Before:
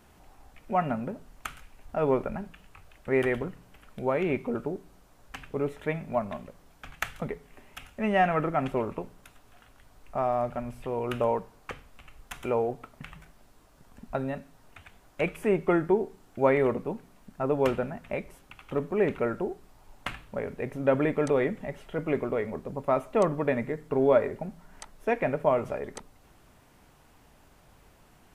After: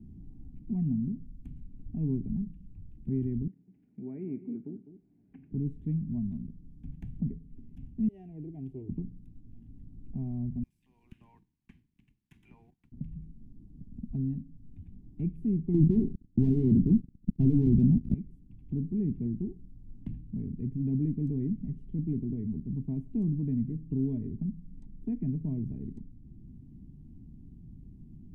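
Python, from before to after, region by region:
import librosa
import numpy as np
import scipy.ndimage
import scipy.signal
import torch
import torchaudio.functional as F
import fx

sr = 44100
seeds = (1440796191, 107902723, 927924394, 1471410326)

y = fx.chain(x, sr, fx.cabinet(low_hz=400.0, low_slope=12, high_hz=2500.0, hz=(570.0, 960.0, 1400.0, 2200.0), db=(5, -4, 10, 5)),
    fx.echo_single(ms=204, db=-13.0), at=(3.47, 5.52))
y = fx.chain(y, sr, fx.highpass(hz=360.0, slope=6),
    fx.fixed_phaser(hz=500.0, stages=4), at=(8.08, 8.89))
y = fx.chain(y, sr, fx.highpass(hz=1300.0, slope=24),
    fx.leveller(passes=2), at=(10.63, 12.92))
y = fx.chain(y, sr, fx.median_filter(points=25),
    fx.leveller(passes=5), at=(15.74, 18.14))
y = scipy.signal.sosfilt(scipy.signal.cheby2(4, 40, 500.0, 'lowpass', fs=sr, output='sos'), y)
y = fx.band_squash(y, sr, depth_pct=40)
y = y * 10.0 ** (5.5 / 20.0)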